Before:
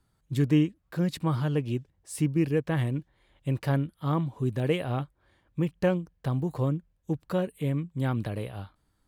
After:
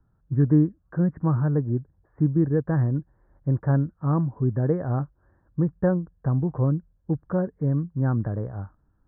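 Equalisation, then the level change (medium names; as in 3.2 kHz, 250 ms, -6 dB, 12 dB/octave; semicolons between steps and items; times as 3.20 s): steep low-pass 1.7 kHz 72 dB/octave; bass shelf 270 Hz +7 dB; 0.0 dB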